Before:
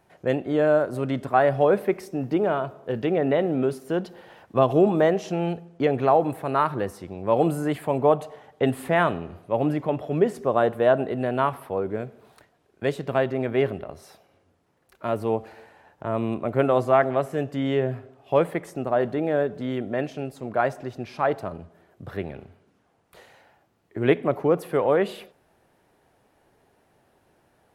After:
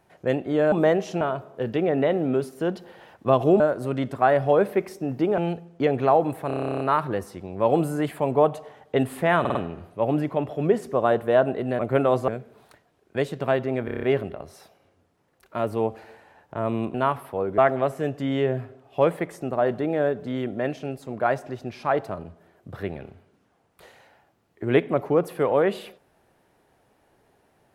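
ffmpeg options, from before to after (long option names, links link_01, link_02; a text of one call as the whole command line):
ffmpeg -i in.wav -filter_complex "[0:a]asplit=29[link_01][link_02][link_03][link_04][link_05][link_06][link_07][link_08][link_09][link_10][link_11][link_12][link_13][link_14][link_15][link_16][link_17][link_18][link_19][link_20][link_21][link_22][link_23][link_24][link_25][link_26][link_27][link_28][link_29];[link_01]atrim=end=0.722[link_30];[link_02]atrim=start=4.888:end=5.382[link_31];[link_03]atrim=start=2.498:end=4.892[link_32];[link_04]atrim=start=0.718:end=2.502[link_33];[link_05]atrim=start=5.378:end=6.502[link_34];[link_06]atrim=start=6.468:end=6.502[link_35];[link_07]atrim=start=6.468:end=6.502[link_36];[link_08]atrim=start=6.468:end=6.502[link_37];[link_09]atrim=start=6.468:end=6.502[link_38];[link_10]atrim=start=6.468:end=6.502[link_39];[link_11]atrim=start=6.468:end=6.502[link_40];[link_12]atrim=start=6.468:end=6.502[link_41];[link_13]atrim=start=6.468:end=6.502[link_42];[link_14]atrim=start=6.468:end=6.502[link_43];[link_15]atrim=start=6.468:end=6.502[link_44];[link_16]atrim=start=6.468:end=9.122[link_45];[link_17]atrim=start=9.068:end=9.122[link_46];[link_18]atrim=start=9.068:end=9.122[link_47];[link_19]atrim=start=9.068:end=11.312[link_48];[link_20]atrim=start=16.428:end=16.922[link_49];[link_21]atrim=start=11.948:end=13.552[link_50];[link_22]atrim=start=13.518:end=13.552[link_51];[link_23]atrim=start=13.518:end=13.552[link_52];[link_24]atrim=start=13.518:end=13.552[link_53];[link_25]atrim=start=13.518:end=13.552[link_54];[link_26]atrim=start=13.518:end=13.552[link_55];[link_27]atrim=start=13.518:end=16.432[link_56];[link_28]atrim=start=11.308:end=11.952[link_57];[link_29]atrim=start=16.918[link_58];[link_30][link_31]acrossfade=duration=0.004:curve1=hsin:curve2=hsin[link_59];[link_59][link_32]acrossfade=duration=0.004:curve1=hsin:curve2=hsin[link_60];[link_60][link_33]acrossfade=duration=0.004:curve1=hsin:curve2=hsin[link_61];[link_61][link_34]acrossfade=duration=0.004:curve1=hsin:curve2=hsin[link_62];[link_62][link_35]acrossfade=duration=0.004:curve1=hsin:curve2=hsin[link_63];[link_63][link_36]acrossfade=duration=0.004:curve1=hsin:curve2=hsin[link_64];[link_64][link_37]acrossfade=duration=0.004:curve1=hsin:curve2=hsin[link_65];[link_65][link_38]acrossfade=duration=0.004:curve1=hsin:curve2=hsin[link_66];[link_66][link_39]acrossfade=duration=0.004:curve1=hsin:curve2=hsin[link_67];[link_67][link_40]acrossfade=duration=0.004:curve1=hsin:curve2=hsin[link_68];[link_68][link_41]acrossfade=duration=0.004:curve1=hsin:curve2=hsin[link_69];[link_69][link_42]acrossfade=duration=0.004:curve1=hsin:curve2=hsin[link_70];[link_70][link_43]acrossfade=duration=0.004:curve1=hsin:curve2=hsin[link_71];[link_71][link_44]acrossfade=duration=0.004:curve1=hsin:curve2=hsin[link_72];[link_72][link_45]acrossfade=duration=0.004:curve1=hsin:curve2=hsin[link_73];[link_73][link_46]acrossfade=duration=0.004:curve1=hsin:curve2=hsin[link_74];[link_74][link_47]acrossfade=duration=0.004:curve1=hsin:curve2=hsin[link_75];[link_75][link_48]acrossfade=duration=0.004:curve1=hsin:curve2=hsin[link_76];[link_76][link_49]acrossfade=duration=0.004:curve1=hsin:curve2=hsin[link_77];[link_77][link_50]acrossfade=duration=0.004:curve1=hsin:curve2=hsin[link_78];[link_78][link_51]acrossfade=duration=0.004:curve1=hsin:curve2=hsin[link_79];[link_79][link_52]acrossfade=duration=0.004:curve1=hsin:curve2=hsin[link_80];[link_80][link_53]acrossfade=duration=0.004:curve1=hsin:curve2=hsin[link_81];[link_81][link_54]acrossfade=duration=0.004:curve1=hsin:curve2=hsin[link_82];[link_82][link_55]acrossfade=duration=0.004:curve1=hsin:curve2=hsin[link_83];[link_83][link_56]acrossfade=duration=0.004:curve1=hsin:curve2=hsin[link_84];[link_84][link_57]acrossfade=duration=0.004:curve1=hsin:curve2=hsin[link_85];[link_85][link_58]acrossfade=duration=0.004:curve1=hsin:curve2=hsin" out.wav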